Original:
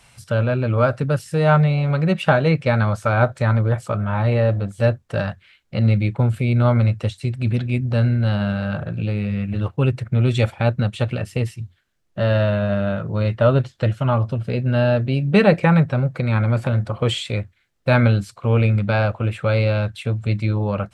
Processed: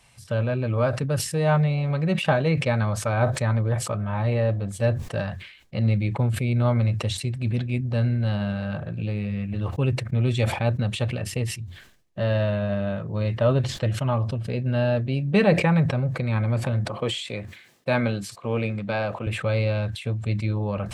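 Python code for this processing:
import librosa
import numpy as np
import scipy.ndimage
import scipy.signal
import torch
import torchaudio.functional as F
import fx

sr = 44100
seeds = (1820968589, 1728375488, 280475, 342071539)

y = fx.highpass(x, sr, hz=170.0, slope=12, at=(16.85, 19.27))
y = fx.notch(y, sr, hz=1400.0, q=7.3)
y = fx.sustainer(y, sr, db_per_s=84.0)
y = y * 10.0 ** (-5.0 / 20.0)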